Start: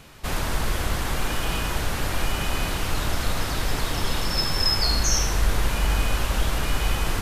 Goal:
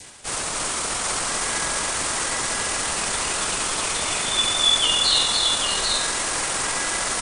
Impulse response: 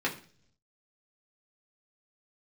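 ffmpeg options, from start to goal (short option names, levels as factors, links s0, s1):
-filter_complex "[0:a]acrossover=split=370|3000[s0][s1][s2];[s0]acompressor=threshold=0.0708:ratio=5[s3];[s3][s1][s2]amix=inputs=3:normalize=0,aemphasis=mode=production:type=bsi,aecho=1:1:73|287|312|619|790:0.211|0.562|0.112|0.251|0.562,areverse,acompressor=mode=upward:threshold=0.0501:ratio=2.5,areverse,adynamicequalizer=threshold=0.00794:dfrequency=1900:dqfactor=2.4:tfrequency=1900:tqfactor=2.4:attack=5:release=100:ratio=0.375:range=2.5:mode=boostabove:tftype=bell,asetrate=29433,aresample=44100,atempo=1.49831,volume=0.794"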